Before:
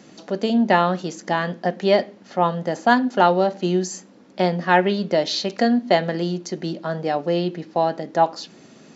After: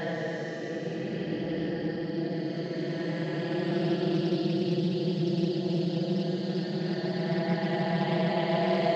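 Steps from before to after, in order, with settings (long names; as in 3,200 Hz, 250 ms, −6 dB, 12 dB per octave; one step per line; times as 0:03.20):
delay that plays each chunk backwards 342 ms, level −6 dB
extreme stretch with random phases 35×, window 0.05 s, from 0:06.11
echo through a band-pass that steps 733 ms, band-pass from 190 Hz, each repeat 0.7 octaves, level −3 dB
highs frequency-modulated by the lows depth 0.24 ms
level −8 dB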